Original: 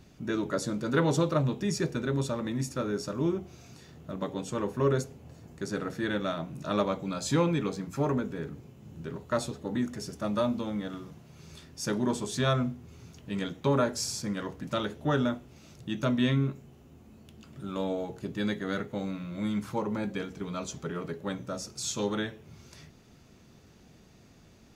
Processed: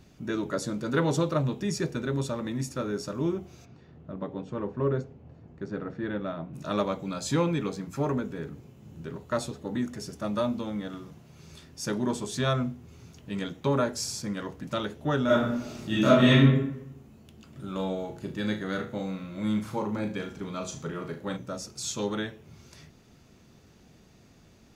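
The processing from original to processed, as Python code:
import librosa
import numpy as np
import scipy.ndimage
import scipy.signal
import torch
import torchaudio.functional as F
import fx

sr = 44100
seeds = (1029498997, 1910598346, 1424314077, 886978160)

y = fx.spacing_loss(x, sr, db_at_10k=32, at=(3.64, 6.53), fade=0.02)
y = fx.reverb_throw(y, sr, start_s=15.25, length_s=1.16, rt60_s=0.87, drr_db=-10.0)
y = fx.room_flutter(y, sr, wall_m=6.4, rt60_s=0.32, at=(17.52, 21.37))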